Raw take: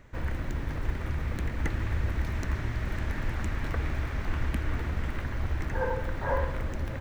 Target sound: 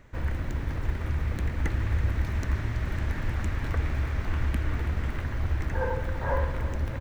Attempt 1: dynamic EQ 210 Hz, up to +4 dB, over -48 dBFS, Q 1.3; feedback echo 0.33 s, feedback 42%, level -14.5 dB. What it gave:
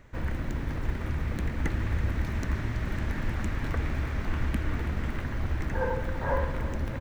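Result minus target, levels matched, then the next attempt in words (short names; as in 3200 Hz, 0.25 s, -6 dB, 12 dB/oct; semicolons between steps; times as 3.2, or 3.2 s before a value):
250 Hz band +4.0 dB
dynamic EQ 82 Hz, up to +4 dB, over -48 dBFS, Q 1.3; feedback echo 0.33 s, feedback 42%, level -14.5 dB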